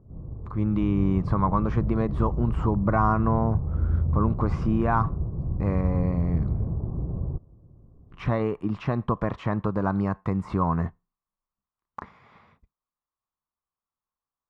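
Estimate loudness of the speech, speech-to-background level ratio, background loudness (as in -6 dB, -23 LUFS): -27.0 LUFS, 3.0 dB, -30.0 LUFS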